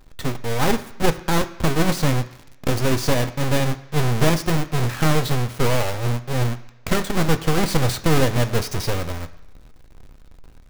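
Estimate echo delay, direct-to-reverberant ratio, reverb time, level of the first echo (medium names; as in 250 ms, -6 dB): no echo, 8.0 dB, 1.0 s, no echo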